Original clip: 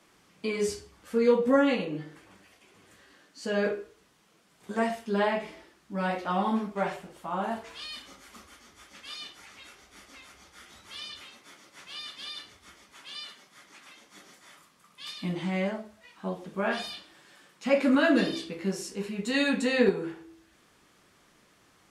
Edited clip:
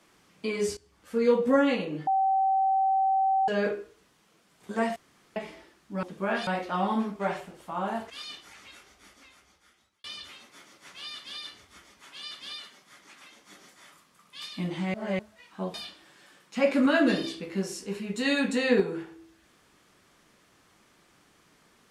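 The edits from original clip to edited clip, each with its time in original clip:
0:00.77–0:01.42: fade in equal-power, from −17 dB
0:02.07–0:03.48: beep over 771 Hz −21 dBFS
0:04.96–0:05.36: fill with room tone
0:07.66–0:09.02: remove
0:09.57–0:10.96: fade out
0:12.07–0:12.34: duplicate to 0:13.23
0:15.59–0:15.84: reverse
0:16.39–0:16.83: move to 0:06.03

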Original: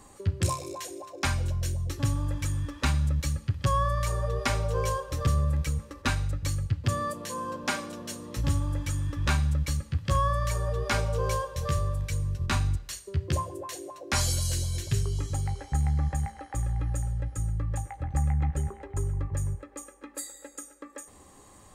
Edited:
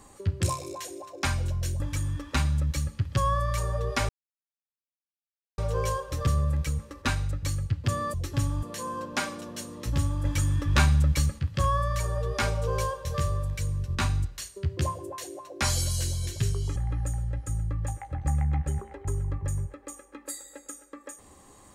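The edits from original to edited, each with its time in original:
0:01.80–0:02.29: move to 0:07.14
0:04.58: splice in silence 1.49 s
0:08.76–0:09.90: clip gain +4.5 dB
0:15.27–0:16.65: remove

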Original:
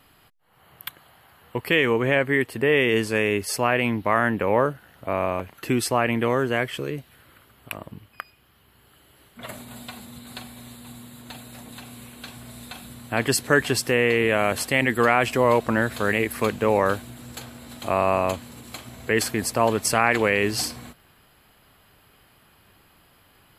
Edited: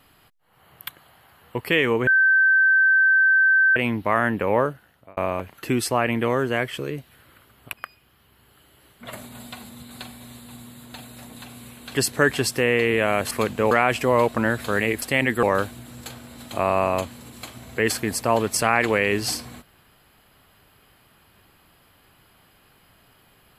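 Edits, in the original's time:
0:02.07–0:03.76: beep over 1,550 Hz −13.5 dBFS
0:04.59–0:05.17: fade out
0:07.73–0:08.09: remove
0:12.31–0:13.26: remove
0:14.62–0:15.03: swap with 0:16.34–0:16.74

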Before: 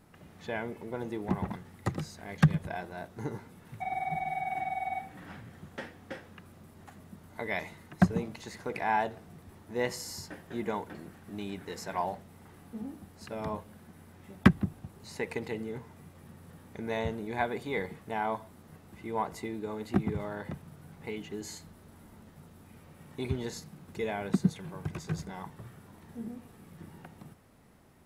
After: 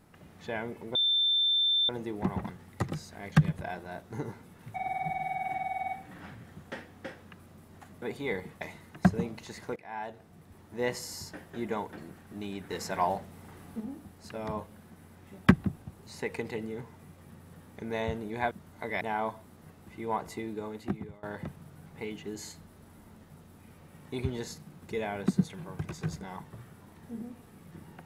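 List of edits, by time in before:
0:00.95: insert tone 3,560 Hz −23 dBFS 0.94 s
0:07.08–0:07.58: swap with 0:17.48–0:18.07
0:08.73–0:09.75: fade in, from −20 dB
0:11.67–0:12.77: clip gain +4 dB
0:19.63–0:20.29: fade out, to −23.5 dB

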